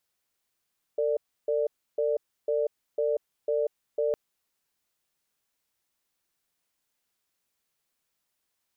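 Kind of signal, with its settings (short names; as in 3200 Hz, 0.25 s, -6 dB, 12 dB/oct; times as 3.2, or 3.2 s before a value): cadence 451 Hz, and 588 Hz, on 0.19 s, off 0.31 s, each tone -26 dBFS 3.16 s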